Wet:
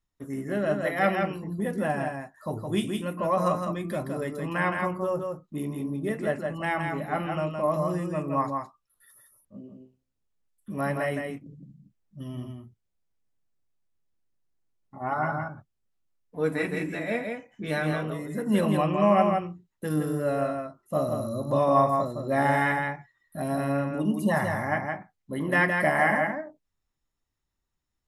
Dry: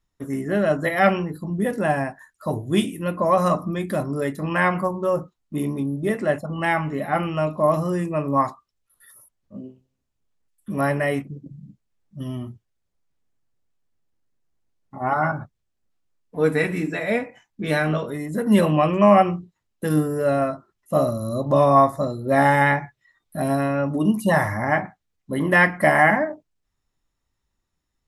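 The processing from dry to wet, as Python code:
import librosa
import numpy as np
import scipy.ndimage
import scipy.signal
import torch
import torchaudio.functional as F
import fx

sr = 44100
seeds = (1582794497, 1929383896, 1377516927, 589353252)

y = x + 10.0 ** (-4.5 / 20.0) * np.pad(x, (int(165 * sr / 1000.0), 0))[:len(x)]
y = F.gain(torch.from_numpy(y), -7.0).numpy()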